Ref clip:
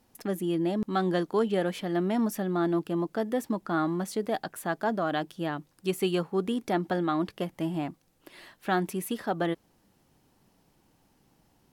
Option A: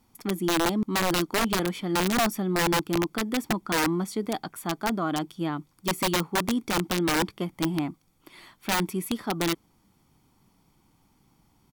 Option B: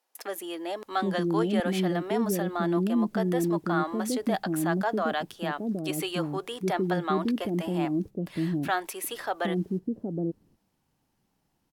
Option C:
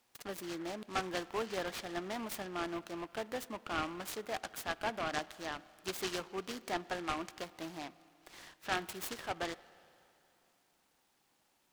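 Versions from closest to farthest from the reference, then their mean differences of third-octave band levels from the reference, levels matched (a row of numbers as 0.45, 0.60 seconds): B, A, C; 5.0, 7.5, 10.0 decibels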